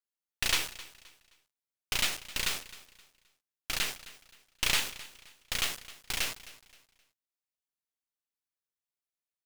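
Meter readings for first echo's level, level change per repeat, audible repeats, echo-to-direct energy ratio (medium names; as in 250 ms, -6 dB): -18.0 dB, -10.0 dB, 2, -17.5 dB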